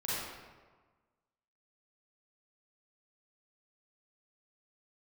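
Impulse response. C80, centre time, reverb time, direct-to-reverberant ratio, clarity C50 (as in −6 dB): −1.0 dB, 116 ms, 1.4 s, −9.5 dB, −5.0 dB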